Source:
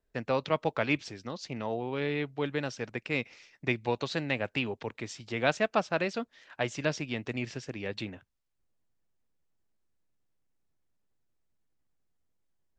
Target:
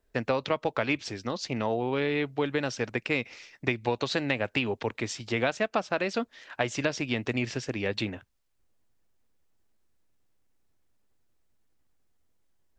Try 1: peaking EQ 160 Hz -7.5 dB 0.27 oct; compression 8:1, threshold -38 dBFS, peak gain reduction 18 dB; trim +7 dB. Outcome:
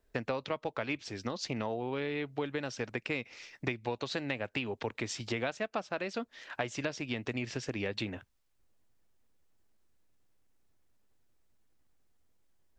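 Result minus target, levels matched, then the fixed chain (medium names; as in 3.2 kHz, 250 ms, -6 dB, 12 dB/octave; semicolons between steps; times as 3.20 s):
compression: peak gain reduction +7.5 dB
peaking EQ 160 Hz -7.5 dB 0.27 oct; compression 8:1, threshold -29.5 dBFS, peak gain reduction 10.5 dB; trim +7 dB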